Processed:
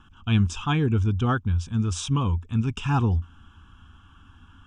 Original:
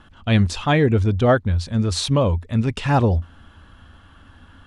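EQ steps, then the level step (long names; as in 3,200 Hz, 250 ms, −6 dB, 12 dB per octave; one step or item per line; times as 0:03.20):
phaser with its sweep stopped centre 2,900 Hz, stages 8
−3.0 dB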